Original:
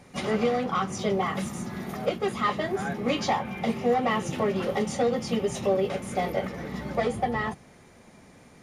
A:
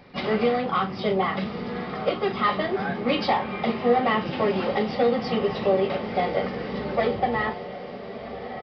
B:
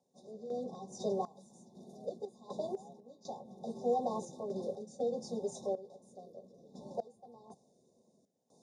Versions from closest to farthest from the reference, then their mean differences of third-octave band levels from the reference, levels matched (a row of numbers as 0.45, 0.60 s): A, B; 6.0, 12.5 dB